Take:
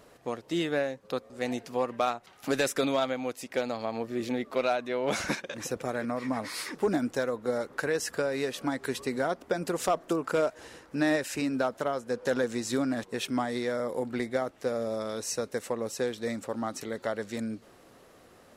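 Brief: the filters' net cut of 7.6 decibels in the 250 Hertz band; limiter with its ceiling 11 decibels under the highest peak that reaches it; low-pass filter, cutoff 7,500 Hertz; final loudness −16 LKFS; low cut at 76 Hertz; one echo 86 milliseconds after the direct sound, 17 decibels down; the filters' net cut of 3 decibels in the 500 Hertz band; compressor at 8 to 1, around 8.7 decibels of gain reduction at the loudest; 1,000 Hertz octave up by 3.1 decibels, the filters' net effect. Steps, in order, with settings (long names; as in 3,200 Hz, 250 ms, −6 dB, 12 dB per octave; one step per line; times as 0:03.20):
high-pass filter 76 Hz
low-pass filter 7,500 Hz
parametric band 250 Hz −8.5 dB
parametric band 500 Hz −3.5 dB
parametric band 1,000 Hz +6.5 dB
downward compressor 8 to 1, threshold −30 dBFS
brickwall limiter −29 dBFS
single-tap delay 86 ms −17 dB
level +24.5 dB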